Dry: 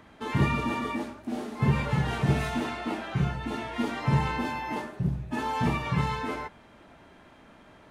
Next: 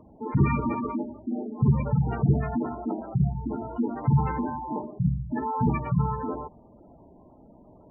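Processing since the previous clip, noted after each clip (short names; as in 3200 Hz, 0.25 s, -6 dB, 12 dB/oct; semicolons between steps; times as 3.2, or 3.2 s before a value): Wiener smoothing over 25 samples; spectral gate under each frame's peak -15 dB strong; gain +3.5 dB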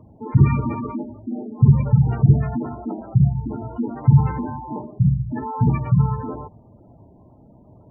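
bell 110 Hz +12.5 dB 1 oct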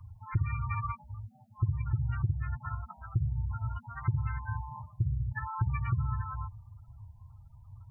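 elliptic band-stop 100–1300 Hz, stop band 70 dB; compressor 10:1, threshold -31 dBFS, peak gain reduction 18 dB; gain +5 dB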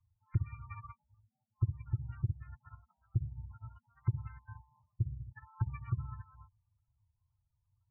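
upward expander 2.5:1, over -41 dBFS; gain -1 dB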